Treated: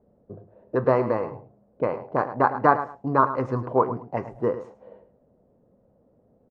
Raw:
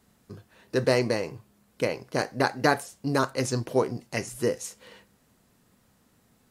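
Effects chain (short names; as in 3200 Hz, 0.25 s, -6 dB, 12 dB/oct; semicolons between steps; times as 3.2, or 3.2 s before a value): feedback echo 0.107 s, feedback 20%, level -12.5 dB; envelope low-pass 550–1100 Hz up, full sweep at -25 dBFS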